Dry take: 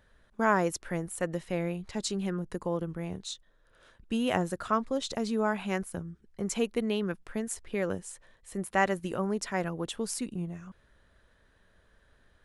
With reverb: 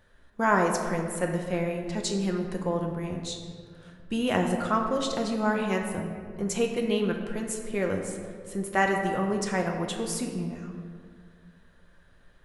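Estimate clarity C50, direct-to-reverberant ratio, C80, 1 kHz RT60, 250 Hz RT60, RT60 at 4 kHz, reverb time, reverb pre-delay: 5.0 dB, 1.5 dB, 6.5 dB, 1.8 s, 2.3 s, 1.1 s, 2.0 s, 6 ms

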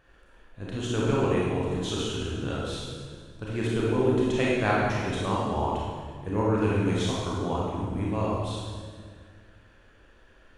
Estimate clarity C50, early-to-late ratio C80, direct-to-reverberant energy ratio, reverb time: −2.5 dB, 0.5 dB, −6.0 dB, 1.8 s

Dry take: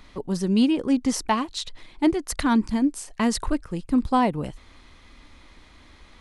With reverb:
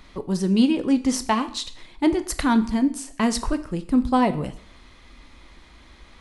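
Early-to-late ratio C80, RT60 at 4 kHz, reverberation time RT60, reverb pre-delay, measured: 18.0 dB, 0.50 s, 0.55 s, 4 ms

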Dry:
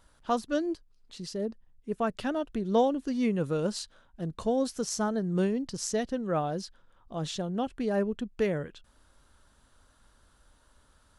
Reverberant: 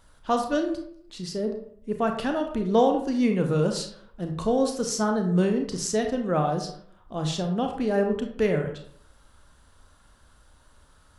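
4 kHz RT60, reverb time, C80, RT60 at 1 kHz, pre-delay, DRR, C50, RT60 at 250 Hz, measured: 0.35 s, 0.60 s, 10.0 dB, 0.60 s, 28 ms, 3.5 dB, 7.0 dB, 0.70 s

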